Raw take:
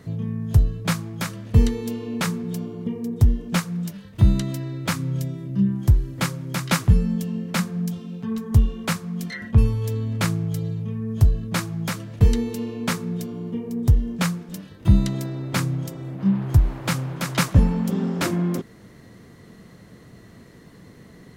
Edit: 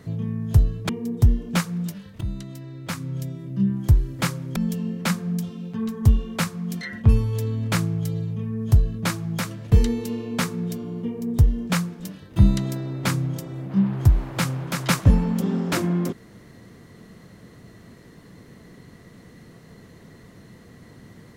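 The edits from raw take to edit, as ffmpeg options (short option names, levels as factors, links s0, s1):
-filter_complex "[0:a]asplit=4[s0][s1][s2][s3];[s0]atrim=end=0.892[s4];[s1]atrim=start=2.878:end=4.2,asetpts=PTS-STARTPTS,afade=t=out:st=1.318:d=0.004:c=hsin:silence=0.188365[s5];[s2]atrim=start=4.2:end=6.552,asetpts=PTS-STARTPTS,afade=t=in:d=1.75:silence=0.188365[s6];[s3]atrim=start=7.048[s7];[s5][s6]concat=n=2:v=0:a=1[s8];[s4][s8]acrossfade=d=0.004:c1=hsin:c2=hsin[s9];[s9][s7]acrossfade=d=0.004:c1=hsin:c2=hsin"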